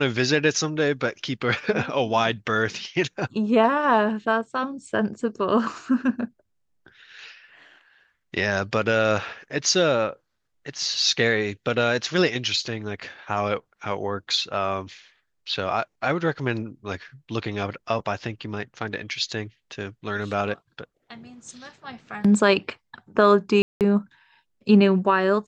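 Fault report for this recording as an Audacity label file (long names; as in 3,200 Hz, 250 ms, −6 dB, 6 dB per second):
23.620000	23.810000	drop-out 188 ms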